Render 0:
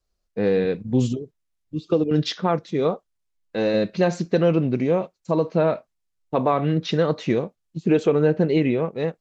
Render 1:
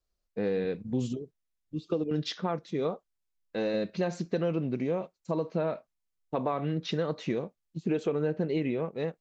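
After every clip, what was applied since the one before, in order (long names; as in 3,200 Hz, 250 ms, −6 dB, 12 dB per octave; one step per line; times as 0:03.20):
parametric band 110 Hz −5.5 dB 0.25 octaves
downward compressor 2 to 1, threshold −22 dBFS, peak gain reduction 5.5 dB
level −6 dB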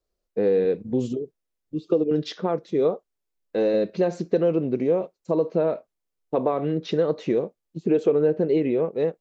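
parametric band 430 Hz +10.5 dB 1.5 octaves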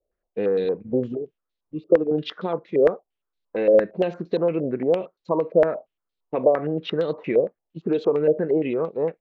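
low-pass on a step sequencer 8.7 Hz 580–3,900 Hz
level −2.5 dB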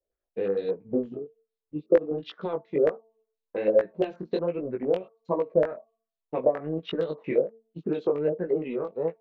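hum removal 223.3 Hz, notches 5
transient designer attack +4 dB, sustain −5 dB
chorus effect 1.3 Hz, delay 16.5 ms, depth 5.3 ms
level −3.5 dB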